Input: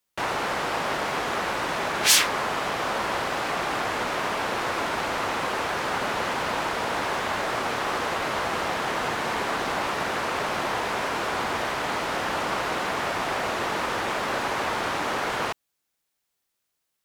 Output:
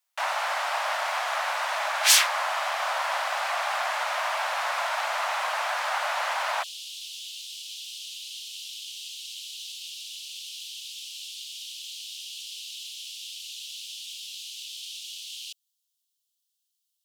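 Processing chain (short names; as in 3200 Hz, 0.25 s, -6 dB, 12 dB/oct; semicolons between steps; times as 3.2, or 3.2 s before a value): steep high-pass 590 Hz 72 dB/oct, from 6.62 s 2900 Hz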